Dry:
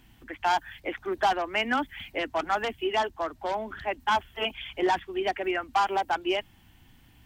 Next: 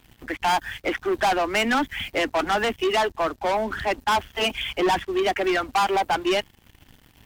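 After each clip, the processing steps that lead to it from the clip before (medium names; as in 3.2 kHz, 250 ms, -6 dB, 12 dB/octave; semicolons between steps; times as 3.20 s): waveshaping leveller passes 3; trim -1 dB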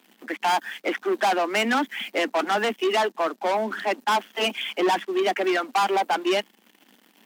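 elliptic high-pass 200 Hz, stop band 40 dB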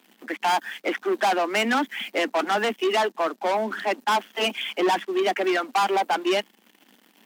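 no audible change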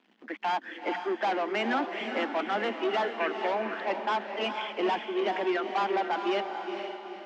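time-frequency box 3.20–3.46 s, 1.5–3 kHz +12 dB; distance through air 180 m; echo that smears into a reverb 458 ms, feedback 45%, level -6 dB; trim -6 dB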